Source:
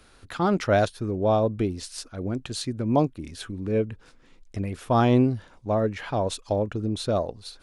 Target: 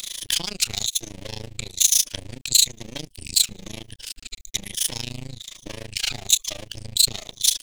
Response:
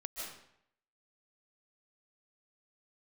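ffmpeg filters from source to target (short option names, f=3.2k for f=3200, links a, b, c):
-filter_complex "[0:a]afftfilt=real='re*pow(10,15/40*sin(2*PI*(1.2*log(max(b,1)*sr/1024/100)/log(2)-(-1.1)*(pts-256)/sr)))':imag='im*pow(10,15/40*sin(2*PI*(1.2*log(max(b,1)*sr/1024/100)/log(2)-(-1.1)*(pts-256)/sr)))':win_size=1024:overlap=0.75,bandreject=f=500:w=12,acrossover=split=130|3000[a][b][c];[b]acompressor=threshold=-33dB:ratio=3[d];[a][d][c]amix=inputs=3:normalize=0,superequalizer=9b=0.708:11b=0.631:12b=0.447:14b=0.631:16b=0.708,asoftclip=type=hard:threshold=-19.5dB,acompressor=threshold=-38dB:ratio=6,aeval=exprs='max(val(0),0)':c=same,tremolo=f=27:d=0.947,aexciter=amount=6.6:drive=9.1:freq=2.1k,adynamicequalizer=threshold=0.00447:dfrequency=6800:dqfactor=3.5:tfrequency=6800:tqfactor=3.5:attack=5:release=100:ratio=0.375:range=2:mode=boostabove:tftype=bell,alimiter=level_in=12dB:limit=-1dB:release=50:level=0:latency=1,volume=-1dB"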